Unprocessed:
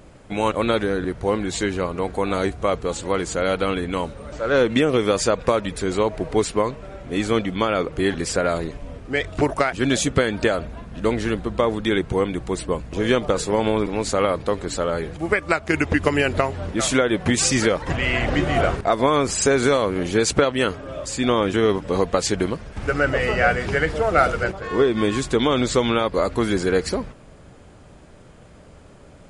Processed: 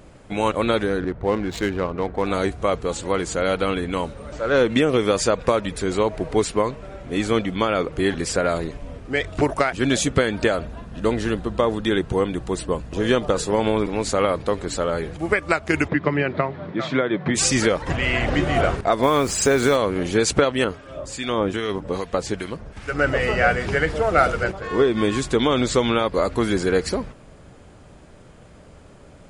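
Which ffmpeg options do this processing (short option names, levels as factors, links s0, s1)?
-filter_complex "[0:a]asettb=1/sr,asplit=3[s0][s1][s2];[s0]atrim=end=1.004[s3];[s1]atrim=start=1:end=2.27,asetpts=PTS-STARTPTS,afade=t=in:d=0.004:c=qsin,afade=t=out:st=1.266:d=0.004:c=qsin,adynamicsmooth=sensitivity=3.5:basefreq=1400[s4];[s2]atrim=start=2.266[s5];[s3][s4]acrossfade=d=0.004:c1=hsin:c2=qsin[s6];[s6][s5]acrossfade=d=0.004:c1=qsin:c2=hsin,asettb=1/sr,asplit=3[s7][s8][s9];[s7]atrim=end=10.644[s10];[s8]atrim=start=10.64:end=13.55,asetpts=PTS-STARTPTS,afade=t=in:d=0.004:c=qsin,afade=t=out:st=2.906:d=0.004:c=qsin,bandreject=f=2200:w=11[s11];[s9]atrim=start=13.546[s12];[s10][s11]acrossfade=d=0.004:c1=hsin:c2=qsin[s13];[s13][s12]acrossfade=d=0.004:c1=qsin:c2=hsin,asplit=3[s14][s15][s16];[s14]afade=t=out:st=15.87:d=0.02[s17];[s15]highpass=f=130:w=0.5412,highpass=f=130:w=1.3066,equalizer=f=150:t=q:w=4:g=6,equalizer=f=230:t=q:w=4:g=-4,equalizer=f=480:t=q:w=4:g=-4,equalizer=f=790:t=q:w=4:g=-4,equalizer=f=1500:t=q:w=4:g=-3,equalizer=f=2800:t=q:w=4:g=-10,lowpass=f=3500:w=0.5412,lowpass=f=3500:w=1.3066,afade=t=in:st=15.87:d=0.02,afade=t=out:st=17.34:d=0.02[s18];[s16]afade=t=in:st=17.34:d=0.02[s19];[s17][s18][s19]amix=inputs=3:normalize=0,asettb=1/sr,asplit=3[s20][s21][s22];[s20]atrim=end=19.034[s23];[s21]atrim=start=19.03:end=19.76,asetpts=PTS-STARTPTS,afade=t=in:d=0.004:c=qsin,afade=t=out:st=0.726:d=0.004:c=qsin,acrusher=bits=5:mix=0:aa=0.5[s24];[s22]atrim=start=19.756[s25];[s23][s24]acrossfade=d=0.004:c1=hsin:c2=qsin[s26];[s26][s25]acrossfade=d=0.004:c1=qsin:c2=hsin,asettb=1/sr,asplit=3[s27][s28][s29];[s27]atrim=end=20.644[s30];[s28]atrim=start=20.64:end=22.99,asetpts=PTS-STARTPTS,afade=t=in:d=0.004:c=qsin,afade=t=out:st=2.346:d=0.004:c=qsin,acrossover=split=1300[s31][s32];[s31]aeval=exprs='val(0)*(1-0.7/2+0.7/2*cos(2*PI*2.5*n/s))':c=same[s33];[s32]aeval=exprs='val(0)*(1-0.7/2-0.7/2*cos(2*PI*2.5*n/s))':c=same[s34];[s33][s34]amix=inputs=2:normalize=0[s35];[s29]atrim=start=22.986[s36];[s30][s35]acrossfade=d=0.004:c1=hsin:c2=qsin[s37];[s37][s36]acrossfade=d=0.004:c1=qsin:c2=hsin"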